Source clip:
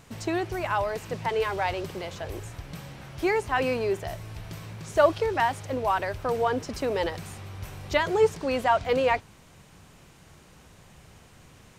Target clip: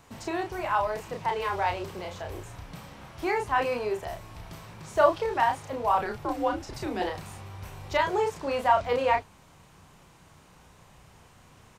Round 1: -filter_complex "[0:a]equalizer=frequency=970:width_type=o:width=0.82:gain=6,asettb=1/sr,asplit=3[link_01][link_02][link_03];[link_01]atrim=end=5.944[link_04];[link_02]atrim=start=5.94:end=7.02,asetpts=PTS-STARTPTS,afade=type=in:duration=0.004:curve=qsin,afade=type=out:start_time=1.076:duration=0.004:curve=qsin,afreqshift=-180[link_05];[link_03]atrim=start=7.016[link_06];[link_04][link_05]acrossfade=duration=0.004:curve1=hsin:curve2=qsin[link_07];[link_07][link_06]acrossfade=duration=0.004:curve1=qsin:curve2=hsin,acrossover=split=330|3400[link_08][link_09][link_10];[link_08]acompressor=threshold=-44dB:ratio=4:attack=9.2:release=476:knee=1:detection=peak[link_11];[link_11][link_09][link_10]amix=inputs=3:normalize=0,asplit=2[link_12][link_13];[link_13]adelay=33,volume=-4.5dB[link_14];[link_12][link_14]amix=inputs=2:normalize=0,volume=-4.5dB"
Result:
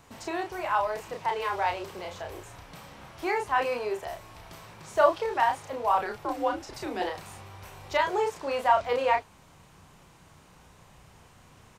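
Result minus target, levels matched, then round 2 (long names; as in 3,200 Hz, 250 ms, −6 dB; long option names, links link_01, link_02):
downward compressor: peak gain reduction +8.5 dB
-filter_complex "[0:a]equalizer=frequency=970:width_type=o:width=0.82:gain=6,asettb=1/sr,asplit=3[link_01][link_02][link_03];[link_01]atrim=end=5.944[link_04];[link_02]atrim=start=5.94:end=7.02,asetpts=PTS-STARTPTS,afade=type=in:duration=0.004:curve=qsin,afade=type=out:start_time=1.076:duration=0.004:curve=qsin,afreqshift=-180[link_05];[link_03]atrim=start=7.016[link_06];[link_04][link_05]acrossfade=duration=0.004:curve1=hsin:curve2=qsin[link_07];[link_07][link_06]acrossfade=duration=0.004:curve1=qsin:curve2=hsin,acrossover=split=330|3400[link_08][link_09][link_10];[link_08]acompressor=threshold=-32.5dB:ratio=4:attack=9.2:release=476:knee=1:detection=peak[link_11];[link_11][link_09][link_10]amix=inputs=3:normalize=0,asplit=2[link_12][link_13];[link_13]adelay=33,volume=-4.5dB[link_14];[link_12][link_14]amix=inputs=2:normalize=0,volume=-4.5dB"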